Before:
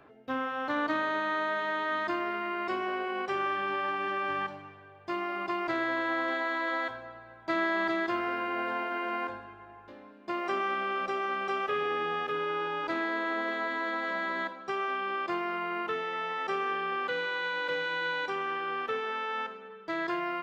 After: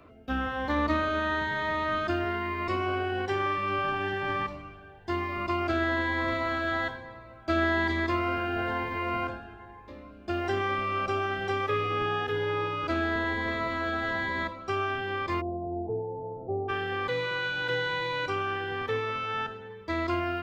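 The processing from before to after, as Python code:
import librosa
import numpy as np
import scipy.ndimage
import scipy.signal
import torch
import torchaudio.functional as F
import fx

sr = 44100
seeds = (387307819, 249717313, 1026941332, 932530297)

y = fx.octave_divider(x, sr, octaves=2, level_db=-2.0)
y = fx.steep_lowpass(y, sr, hz=860.0, slope=72, at=(15.4, 16.68), fade=0.02)
y = fx.notch_cascade(y, sr, direction='rising', hz=1.1)
y = F.gain(torch.from_numpy(y), 4.5).numpy()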